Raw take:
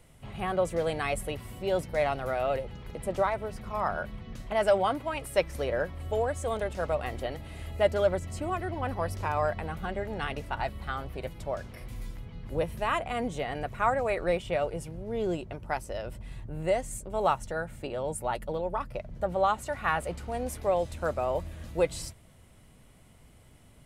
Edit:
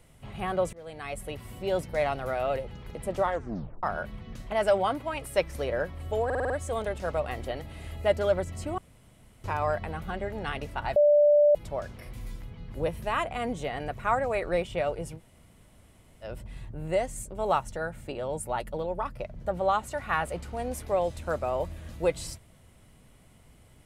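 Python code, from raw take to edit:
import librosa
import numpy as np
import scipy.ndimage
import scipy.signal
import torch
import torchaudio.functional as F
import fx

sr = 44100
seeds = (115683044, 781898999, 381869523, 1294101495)

y = fx.edit(x, sr, fx.fade_in_from(start_s=0.73, length_s=0.81, floor_db=-24.0),
    fx.tape_stop(start_s=3.22, length_s=0.61),
    fx.stutter(start_s=6.25, slice_s=0.05, count=6),
    fx.room_tone_fill(start_s=8.53, length_s=0.66),
    fx.bleep(start_s=10.71, length_s=0.59, hz=589.0, db=-16.0),
    fx.room_tone_fill(start_s=14.93, length_s=1.06, crossfade_s=0.06), tone=tone)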